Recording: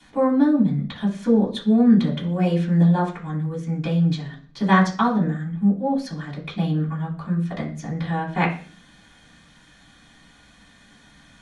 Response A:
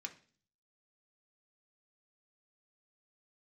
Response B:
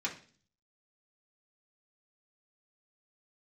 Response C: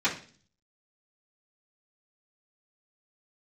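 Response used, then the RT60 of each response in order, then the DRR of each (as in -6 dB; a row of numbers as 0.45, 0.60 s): C; 0.45, 0.40, 0.40 s; 2.5, -5.0, -12.5 dB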